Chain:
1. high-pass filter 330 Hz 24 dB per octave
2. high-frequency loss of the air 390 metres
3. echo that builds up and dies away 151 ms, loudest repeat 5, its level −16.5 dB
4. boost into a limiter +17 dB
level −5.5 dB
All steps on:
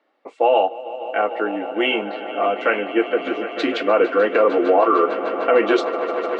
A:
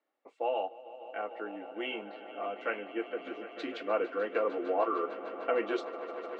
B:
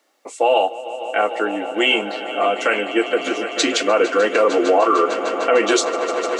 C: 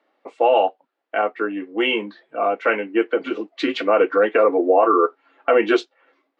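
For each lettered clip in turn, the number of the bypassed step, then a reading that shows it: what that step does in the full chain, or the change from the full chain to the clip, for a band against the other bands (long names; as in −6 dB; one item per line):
4, change in crest factor +5.5 dB
2, 4 kHz band +6.5 dB
3, change in momentary loudness spread +1 LU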